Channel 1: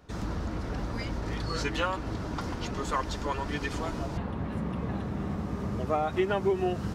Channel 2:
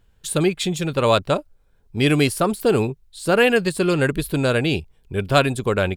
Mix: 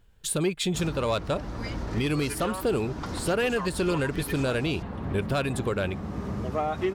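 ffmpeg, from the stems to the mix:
-filter_complex "[0:a]asoftclip=type=tanh:threshold=-18dB,adelay=650,volume=1dB[a];[1:a]acontrast=61,volume=-7.5dB[b];[a][b]amix=inputs=2:normalize=0,alimiter=limit=-17.5dB:level=0:latency=1:release=331"

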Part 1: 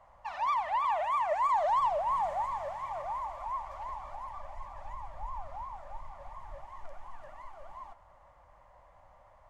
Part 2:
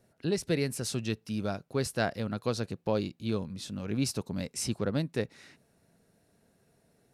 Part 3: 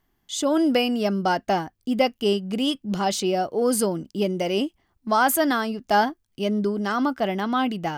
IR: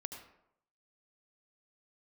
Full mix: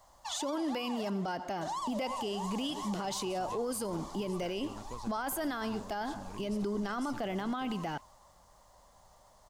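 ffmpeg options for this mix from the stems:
-filter_complex "[0:a]highshelf=f=7.9k:g=-5.5,acompressor=threshold=-32dB:ratio=6,aexciter=amount=12.3:drive=4.8:freq=3.6k,volume=-3dB,asplit=3[a][b][c];[a]atrim=end=1.1,asetpts=PTS-STARTPTS,afade=t=out:st=1.096:d=0.004:c=hsin[d];[b]atrim=start=1.1:end=1.61,asetpts=PTS-STARTPTS,volume=0[e];[c]atrim=start=1.61,asetpts=PTS-STARTPTS,afade=t=in:d=0.004:c=hsin[f];[d][e][f]concat=n=3:v=0:a=1,asplit=2[g][h];[h]volume=-13.5dB[i];[1:a]acompressor=threshold=-36dB:ratio=6,adelay=2450,volume=-7.5dB[j];[2:a]acrossover=split=500|3000[k][l][m];[k]acompressor=threshold=-24dB:ratio=6[n];[n][l][m]amix=inputs=3:normalize=0,volume=-5.5dB,asplit=2[o][p];[p]volume=-9.5dB[q];[3:a]atrim=start_sample=2205[r];[q][r]afir=irnorm=-1:irlink=0[s];[i]aecho=0:1:222|444|666|888|1110|1332:1|0.44|0.194|0.0852|0.0375|0.0165[t];[g][j][o][s][t]amix=inputs=5:normalize=0,alimiter=level_in=3dB:limit=-24dB:level=0:latency=1:release=49,volume=-3dB"

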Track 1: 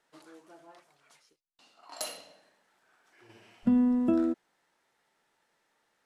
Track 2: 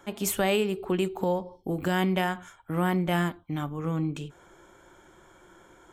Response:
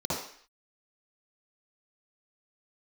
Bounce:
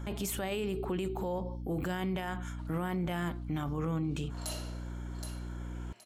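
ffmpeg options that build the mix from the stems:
-filter_complex "[0:a]adynamicequalizer=threshold=0.002:dfrequency=3100:dqfactor=0.7:tfrequency=3100:tqfactor=0.7:attack=5:release=100:ratio=0.375:range=3:mode=boostabove:tftype=highshelf,adelay=2450,volume=-6dB,asplit=3[a][b][c];[b]volume=-14dB[d];[c]volume=-9.5dB[e];[1:a]alimiter=limit=-19.5dB:level=0:latency=1:release=333,aeval=exprs='val(0)+0.01*(sin(2*PI*60*n/s)+sin(2*PI*2*60*n/s)/2+sin(2*PI*3*60*n/s)/3+sin(2*PI*4*60*n/s)/4+sin(2*PI*5*60*n/s)/5)':c=same,volume=1.5dB[f];[2:a]atrim=start_sample=2205[g];[d][g]afir=irnorm=-1:irlink=0[h];[e]aecho=0:1:771|1542|2313|3084:1|0.27|0.0729|0.0197[i];[a][f][h][i]amix=inputs=4:normalize=0,alimiter=level_in=2.5dB:limit=-24dB:level=0:latency=1:release=18,volume=-2.5dB"

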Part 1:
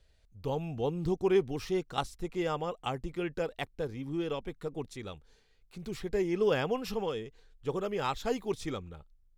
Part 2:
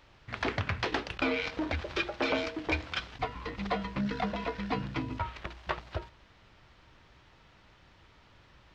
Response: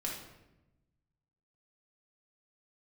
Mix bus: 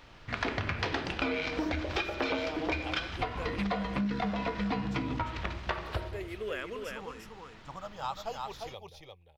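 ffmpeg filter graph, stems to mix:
-filter_complex "[0:a]lowshelf=f=520:t=q:w=1.5:g=-7.5,asplit=2[a][b];[b]afreqshift=-0.32[c];[a][c]amix=inputs=2:normalize=1,volume=-2dB,asplit=2[d][e];[e]volume=-4.5dB[f];[1:a]volume=2dB,asplit=2[g][h];[h]volume=-4dB[i];[2:a]atrim=start_sample=2205[j];[i][j]afir=irnorm=-1:irlink=0[k];[f]aecho=0:1:349:1[l];[d][g][k][l]amix=inputs=4:normalize=0,acompressor=threshold=-29dB:ratio=5"

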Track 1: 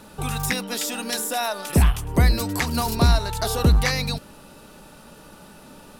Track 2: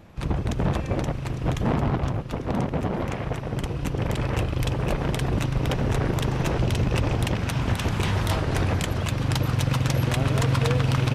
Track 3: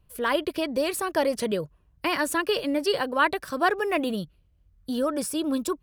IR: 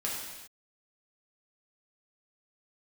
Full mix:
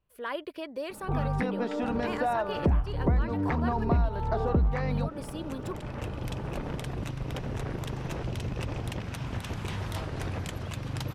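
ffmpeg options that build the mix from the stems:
-filter_complex "[0:a]lowpass=1.1k,dynaudnorm=f=140:g=3:m=6.5dB,adelay=900,volume=-2dB[a];[1:a]adelay=1650,volume=-10dB[b];[2:a]bass=f=250:g=-8,treble=f=4k:g=-9,volume=-9dB,asplit=2[c][d];[d]apad=whole_len=564178[e];[b][e]sidechaincompress=threshold=-37dB:ratio=8:attack=16:release=917[f];[a][f][c]amix=inputs=3:normalize=0,acompressor=threshold=-26dB:ratio=3"

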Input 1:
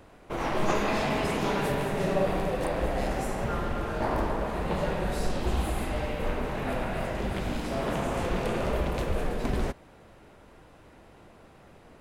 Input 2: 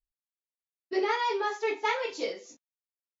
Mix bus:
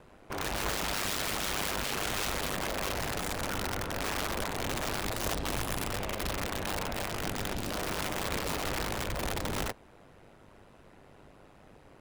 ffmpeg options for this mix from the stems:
-filter_complex "[0:a]aeval=exprs='(tanh(11.2*val(0)+0.4)-tanh(0.4))/11.2':c=same,volume=1.5dB[a];[1:a]aeval=exprs='val(0)*sin(2*PI*970*n/s+970*0.85/2.7*sin(2*PI*2.7*n/s))':c=same,volume=-3.5dB,asplit=2[b][c];[c]volume=-9dB,aecho=0:1:992:1[d];[a][b][d]amix=inputs=3:normalize=0,aeval=exprs='(mod(17.8*val(0)+1,2)-1)/17.8':c=same,aeval=exprs='val(0)*sin(2*PI*50*n/s)':c=same"

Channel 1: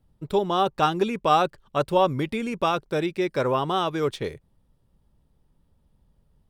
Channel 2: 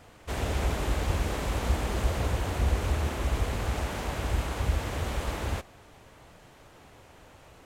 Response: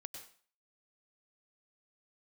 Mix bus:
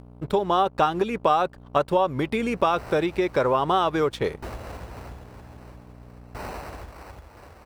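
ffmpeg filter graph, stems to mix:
-filter_complex "[0:a]aeval=exprs='val(0)+0.00708*(sin(2*PI*60*n/s)+sin(2*PI*2*60*n/s)/2+sin(2*PI*3*60*n/s)/3+sin(2*PI*4*60*n/s)/4+sin(2*PI*5*60*n/s)/5)':c=same,aeval=exprs='sgn(val(0))*max(abs(val(0))-0.00355,0)':c=same,acompressor=threshold=-25dB:ratio=12,volume=2.5dB,asplit=2[a][b];[1:a]acrusher=samples=13:mix=1:aa=0.000001,acompressor=threshold=-32dB:ratio=6,aeval=exprs='val(0)*pow(10,-23*if(lt(mod(0.52*n/s,1),2*abs(0.52)/1000),1-mod(0.52*n/s,1)/(2*abs(0.52)/1000),(mod(0.52*n/s,1)-2*abs(0.52)/1000)/(1-2*abs(0.52)/1000))/20)':c=same,adelay=2500,volume=-0.5dB[c];[b]apad=whole_len=447909[d];[c][d]sidechaincompress=threshold=-32dB:ratio=8:attack=16:release=216[e];[a][e]amix=inputs=2:normalize=0,equalizer=f=880:t=o:w=2.6:g=7,acompressor=mode=upward:threshold=-45dB:ratio=2.5"

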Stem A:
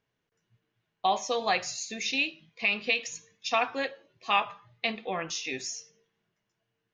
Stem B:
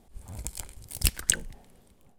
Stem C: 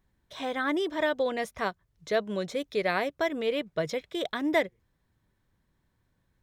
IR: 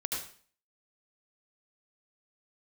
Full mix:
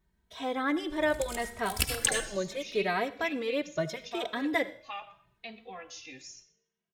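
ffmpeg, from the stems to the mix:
-filter_complex "[0:a]alimiter=limit=-17.5dB:level=0:latency=1:release=360,adelay=600,volume=-9.5dB,asplit=3[a][b][c];[b]volume=-18.5dB[d];[c]volume=-19dB[e];[1:a]bass=f=250:g=-10,treble=f=4k:g=-7,adelay=750,volume=1dB,asplit=2[f][g];[g]volume=-3dB[h];[2:a]bandreject=f=209.6:t=h:w=4,bandreject=f=419.2:t=h:w=4,bandreject=f=628.8:t=h:w=4,bandreject=f=838.4:t=h:w=4,bandreject=f=1.048k:t=h:w=4,bandreject=f=1.2576k:t=h:w=4,bandreject=f=1.4672k:t=h:w=4,bandreject=f=1.6768k:t=h:w=4,bandreject=f=1.8864k:t=h:w=4,bandreject=f=2.096k:t=h:w=4,bandreject=f=2.3056k:t=h:w=4,bandreject=f=2.5152k:t=h:w=4,bandreject=f=2.7248k:t=h:w=4,bandreject=f=2.9344k:t=h:w=4,bandreject=f=3.144k:t=h:w=4,bandreject=f=3.3536k:t=h:w=4,bandreject=f=3.5632k:t=h:w=4,bandreject=f=3.7728k:t=h:w=4,bandreject=f=3.9824k:t=h:w=4,bandreject=f=4.192k:t=h:w=4,bandreject=f=4.4016k:t=h:w=4,bandreject=f=4.6112k:t=h:w=4,bandreject=f=4.8208k:t=h:w=4,bandreject=f=5.0304k:t=h:w=4,bandreject=f=5.24k:t=h:w=4,bandreject=f=5.4496k:t=h:w=4,bandreject=f=5.6592k:t=h:w=4,bandreject=f=5.8688k:t=h:w=4,bandreject=f=6.0784k:t=h:w=4,bandreject=f=6.288k:t=h:w=4,volume=0dB,asplit=2[i][j];[j]volume=-18.5dB[k];[3:a]atrim=start_sample=2205[l];[d][h][k]amix=inputs=3:normalize=0[m];[m][l]afir=irnorm=-1:irlink=0[n];[e]aecho=0:1:125|250|375|500:1|0.25|0.0625|0.0156[o];[a][f][i][n][o]amix=inputs=5:normalize=0,asplit=2[p][q];[q]adelay=2.8,afreqshift=0.76[r];[p][r]amix=inputs=2:normalize=1"

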